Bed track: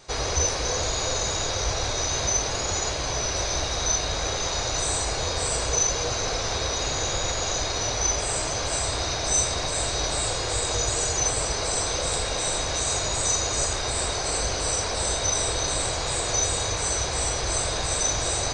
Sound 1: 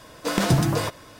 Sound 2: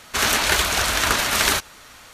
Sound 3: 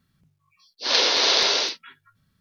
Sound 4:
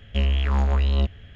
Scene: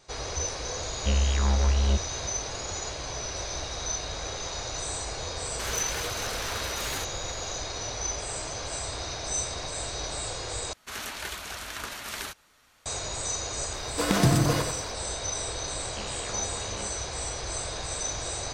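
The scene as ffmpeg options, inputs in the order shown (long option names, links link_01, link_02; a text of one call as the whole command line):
ffmpeg -i bed.wav -i cue0.wav -i cue1.wav -i cue2.wav -i cue3.wav -filter_complex "[4:a]asplit=2[link_01][link_02];[2:a]asplit=2[link_03][link_04];[0:a]volume=-7.5dB[link_05];[link_03]asoftclip=type=hard:threshold=-16dB[link_06];[1:a]aecho=1:1:92|184|276|368|460:0.447|0.174|0.0679|0.0265|0.0103[link_07];[link_02]highpass=frequency=230:width=0.5412,highpass=frequency=230:width=1.3066[link_08];[link_05]asplit=2[link_09][link_10];[link_09]atrim=end=10.734[link_11];[link_04]atrim=end=2.13,asetpts=PTS-STARTPTS,volume=-17dB[link_12];[link_10]atrim=start=12.856[link_13];[link_01]atrim=end=1.35,asetpts=PTS-STARTPTS,volume=-3dB,afade=type=in:duration=0.004:curve=hsin,afade=type=out:start_time=1.346:duration=0.004:curve=hsin,adelay=910[link_14];[link_06]atrim=end=2.13,asetpts=PTS-STARTPTS,volume=-14dB,afade=type=in:duration=0.004:curve=hsin,afade=type=out:start_time=2.126:duration=0.004:curve=hsin,adelay=240345S[link_15];[link_07]atrim=end=1.19,asetpts=PTS-STARTPTS,volume=-2.5dB,afade=type=in:duration=0.004:curve=hsin,afade=type=out:start_time=1.186:duration=0.004:curve=hsin,adelay=13730[link_16];[link_08]atrim=end=1.35,asetpts=PTS-STARTPTS,volume=-9.5dB,afade=type=in:duration=0.004:curve=hsin,afade=type=out:start_time=1.346:duration=0.004:curve=hsin,adelay=15810[link_17];[link_11][link_12]acrossfade=duration=0.004:curve1=hsin:curve2=hsin[link_18];[link_18][link_13]acrossfade=duration=0.004:curve1=hsin:curve2=hsin[link_19];[link_19][link_14][link_15][link_16][link_17]amix=inputs=5:normalize=0" out.wav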